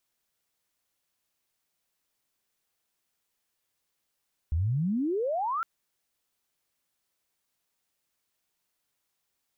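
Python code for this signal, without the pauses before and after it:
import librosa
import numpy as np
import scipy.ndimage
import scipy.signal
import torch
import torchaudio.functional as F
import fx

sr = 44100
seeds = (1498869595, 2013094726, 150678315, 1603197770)

y = fx.chirp(sr, length_s=1.11, from_hz=73.0, to_hz=1400.0, law='logarithmic', from_db=-23.5, to_db=-27.0)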